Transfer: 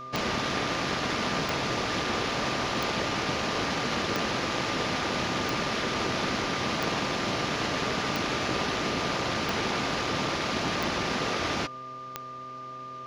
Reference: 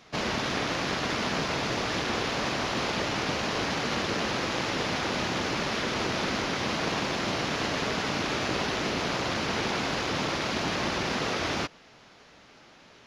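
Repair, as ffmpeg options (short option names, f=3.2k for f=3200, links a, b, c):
-af "adeclick=t=4,bandreject=f=128.4:t=h:w=4,bandreject=f=256.8:t=h:w=4,bandreject=f=385.2:t=h:w=4,bandreject=f=513.6:t=h:w=4,bandreject=f=642:t=h:w=4,bandreject=f=1.2k:w=30"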